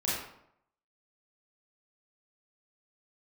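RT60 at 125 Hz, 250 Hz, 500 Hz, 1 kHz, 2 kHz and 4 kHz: 0.75 s, 0.75 s, 0.75 s, 0.75 s, 0.60 s, 0.50 s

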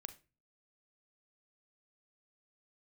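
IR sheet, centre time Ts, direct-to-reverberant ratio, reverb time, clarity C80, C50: 6 ms, 9.5 dB, 0.30 s, 21.0 dB, 15.0 dB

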